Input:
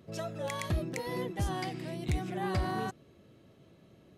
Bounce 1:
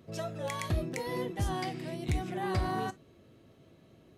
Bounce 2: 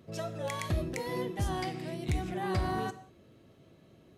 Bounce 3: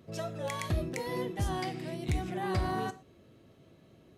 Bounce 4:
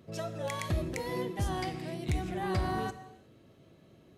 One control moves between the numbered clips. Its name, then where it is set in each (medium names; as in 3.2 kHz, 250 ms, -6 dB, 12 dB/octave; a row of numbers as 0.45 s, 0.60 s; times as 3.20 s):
gated-style reverb, gate: 80 ms, 220 ms, 140 ms, 390 ms